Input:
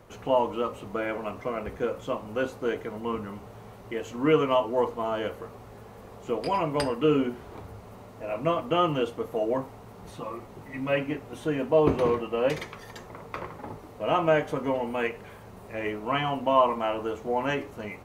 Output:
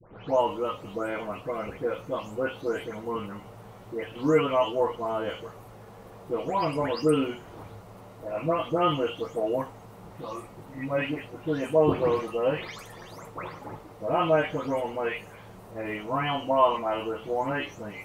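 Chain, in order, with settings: delay that grows with frequency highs late, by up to 291 ms

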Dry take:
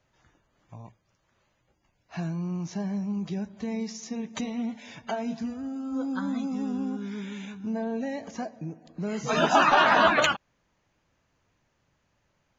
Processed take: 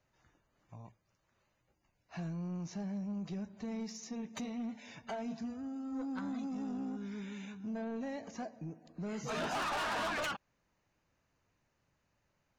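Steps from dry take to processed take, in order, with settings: band-stop 3.3 kHz, Q 11; saturation -27 dBFS, distortion -5 dB; trim -6.5 dB

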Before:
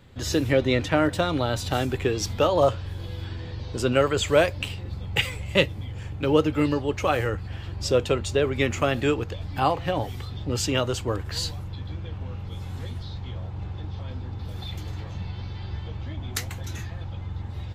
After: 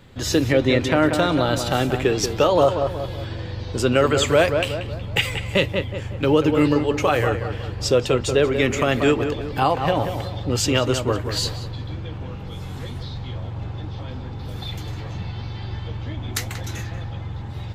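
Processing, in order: peaking EQ 77 Hz -5.5 dB 0.76 oct; on a send: filtered feedback delay 184 ms, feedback 45%, low-pass 2.2 kHz, level -8 dB; on the sum: loudness maximiser +11 dB; trim -6 dB

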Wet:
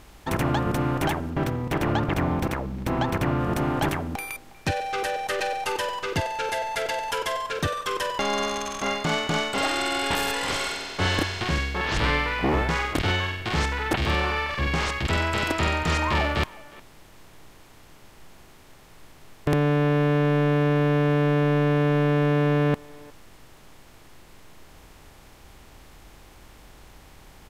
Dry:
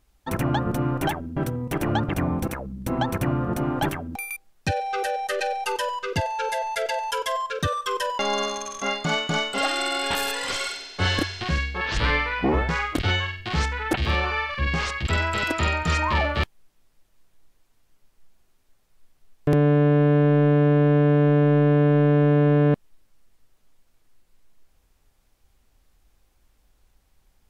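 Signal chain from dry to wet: spectral levelling over time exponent 0.6; 1.30–3.40 s: peaking EQ 10 kHz -6 dB 1.3 oct; speakerphone echo 360 ms, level -20 dB; trim -4 dB

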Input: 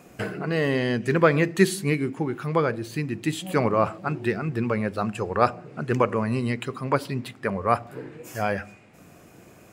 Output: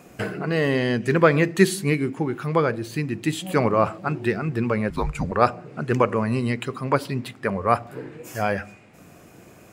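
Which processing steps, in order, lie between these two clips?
4.90–5.32 s: frequency shift -260 Hz; trim +2 dB

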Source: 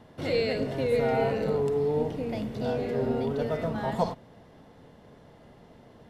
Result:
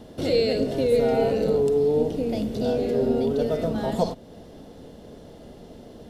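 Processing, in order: ten-band graphic EQ 125 Hz -9 dB, 1 kHz -10 dB, 2 kHz -10 dB; in parallel at 0 dB: compression, threshold -42 dBFS, peak gain reduction 17 dB; on the sum: trim +6.5 dB

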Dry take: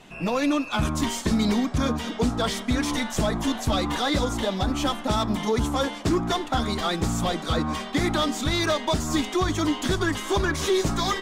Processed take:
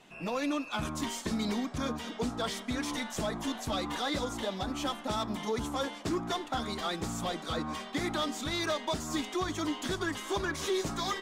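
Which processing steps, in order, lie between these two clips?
bass shelf 130 Hz -9.5 dB; trim -7.5 dB

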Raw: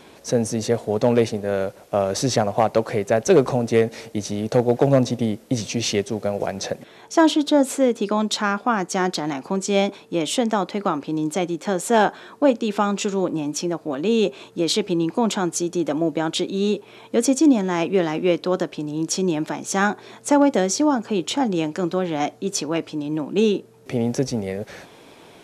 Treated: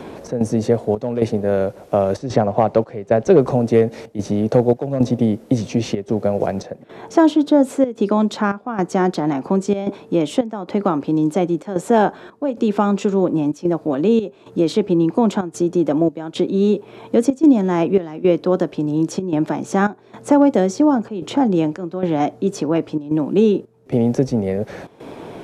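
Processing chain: tilt shelf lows +7 dB, about 1.5 kHz; trance gate "xx.xxxx..xxxxx" 111 bpm -12 dB; 2.18–3.40 s: distance through air 57 m; three bands compressed up and down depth 40%; trim -1 dB

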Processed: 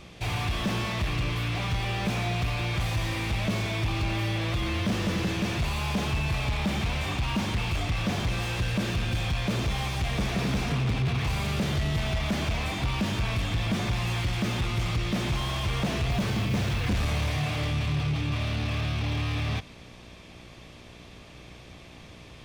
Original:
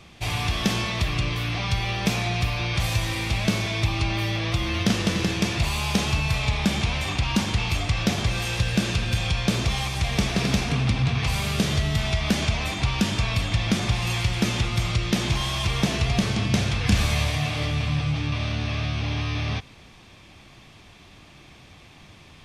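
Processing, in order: mains buzz 60 Hz, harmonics 11, -52 dBFS -3 dB/octave; saturation -21.5 dBFS, distortion -11 dB; 16.10–16.90 s: modulation noise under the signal 27 dB; slew-rate limiter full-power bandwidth 65 Hz

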